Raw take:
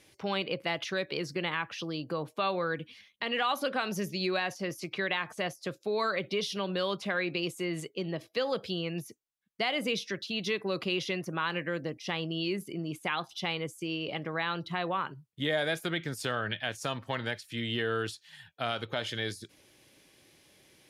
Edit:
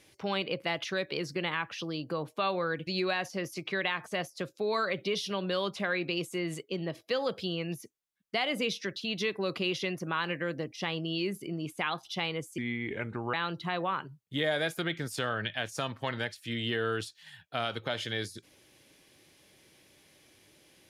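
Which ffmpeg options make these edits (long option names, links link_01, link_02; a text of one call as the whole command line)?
ffmpeg -i in.wav -filter_complex "[0:a]asplit=4[link_01][link_02][link_03][link_04];[link_01]atrim=end=2.872[link_05];[link_02]atrim=start=4.128:end=13.844[link_06];[link_03]atrim=start=13.84:end=14.4,asetpts=PTS-STARTPTS,asetrate=32634,aresample=44100[link_07];[link_04]atrim=start=14.396[link_08];[link_05][link_06]acrossfade=duration=0.004:curve1=hsin:curve2=hsin[link_09];[link_09][link_07]acrossfade=duration=0.004:curve1=hsin:curve2=hsin[link_10];[link_10][link_08]acrossfade=duration=0.004:curve1=hsin:curve2=hsin" out.wav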